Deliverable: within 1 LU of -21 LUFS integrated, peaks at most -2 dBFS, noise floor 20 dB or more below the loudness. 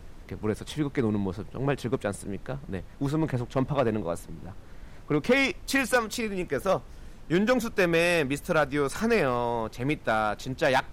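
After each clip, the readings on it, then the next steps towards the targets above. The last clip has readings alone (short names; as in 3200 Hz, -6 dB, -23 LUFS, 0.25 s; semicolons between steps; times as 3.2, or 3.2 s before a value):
clipped 0.5%; flat tops at -15.5 dBFS; noise floor -46 dBFS; noise floor target -48 dBFS; loudness -27.5 LUFS; peak -15.5 dBFS; loudness target -21.0 LUFS
-> clip repair -15.5 dBFS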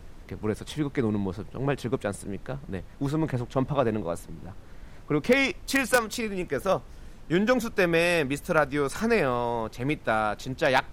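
clipped 0.0%; noise floor -46 dBFS; noise floor target -47 dBFS
-> noise print and reduce 6 dB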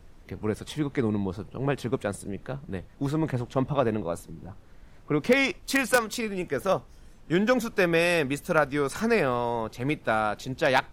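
noise floor -51 dBFS; loudness -27.0 LUFS; peak -6.5 dBFS; loudness target -21.0 LUFS
-> gain +6 dB; limiter -2 dBFS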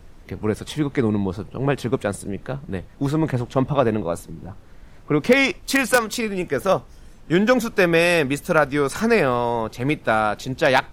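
loudness -21.0 LUFS; peak -2.0 dBFS; noise floor -45 dBFS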